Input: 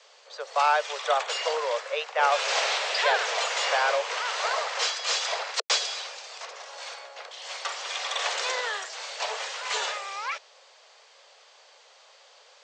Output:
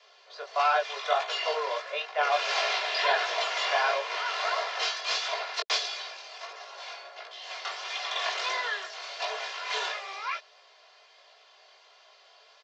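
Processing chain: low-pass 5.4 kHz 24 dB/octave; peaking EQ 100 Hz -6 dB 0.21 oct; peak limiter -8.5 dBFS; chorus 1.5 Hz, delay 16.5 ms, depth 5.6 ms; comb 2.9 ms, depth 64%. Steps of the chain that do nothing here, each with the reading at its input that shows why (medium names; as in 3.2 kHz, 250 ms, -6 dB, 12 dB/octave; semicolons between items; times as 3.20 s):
peaking EQ 100 Hz: input has nothing below 360 Hz; peak limiter -8.5 dBFS: peak at its input -10.5 dBFS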